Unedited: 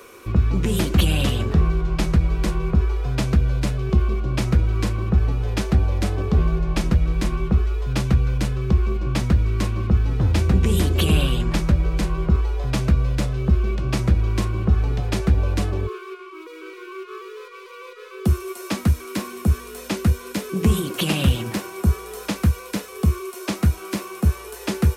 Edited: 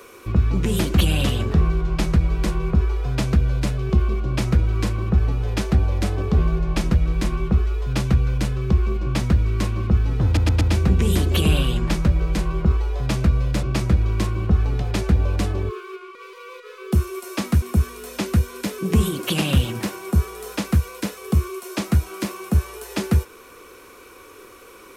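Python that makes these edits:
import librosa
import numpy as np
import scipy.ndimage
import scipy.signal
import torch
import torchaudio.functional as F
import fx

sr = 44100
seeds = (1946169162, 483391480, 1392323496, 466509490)

y = fx.edit(x, sr, fx.stutter(start_s=10.25, slice_s=0.12, count=4),
    fx.cut(start_s=13.27, length_s=0.54),
    fx.cut(start_s=16.33, length_s=1.15),
    fx.cut(start_s=18.95, length_s=0.38), tone=tone)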